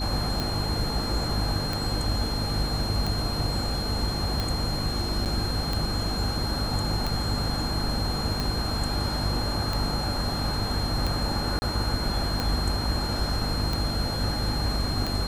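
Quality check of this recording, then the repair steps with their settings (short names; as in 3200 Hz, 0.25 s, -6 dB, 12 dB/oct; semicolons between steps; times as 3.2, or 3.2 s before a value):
hum 50 Hz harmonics 6 -31 dBFS
tick 45 rpm
tone 4200 Hz -32 dBFS
5.25–5.26 gap 8 ms
11.59–11.62 gap 30 ms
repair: de-click; notch 4200 Hz, Q 30; de-hum 50 Hz, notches 6; interpolate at 5.25, 8 ms; interpolate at 11.59, 30 ms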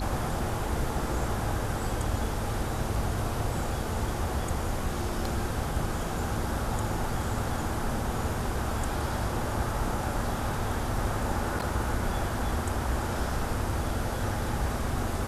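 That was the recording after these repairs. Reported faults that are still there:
none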